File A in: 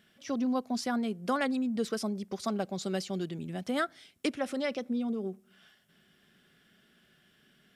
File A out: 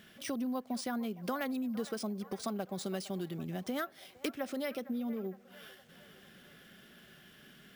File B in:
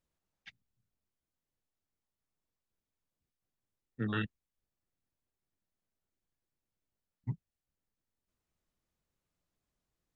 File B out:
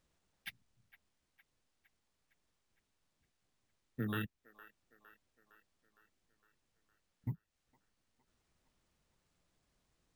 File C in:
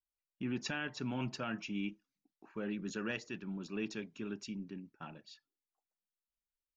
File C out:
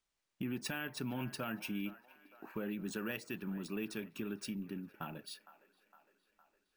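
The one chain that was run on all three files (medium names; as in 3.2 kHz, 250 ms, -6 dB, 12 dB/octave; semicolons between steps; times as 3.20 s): compression 2.5:1, threshold -48 dBFS; on a send: feedback echo behind a band-pass 460 ms, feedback 59%, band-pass 1.1 kHz, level -15 dB; on the sum: careless resampling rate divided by 3×, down none, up hold; trim +7.5 dB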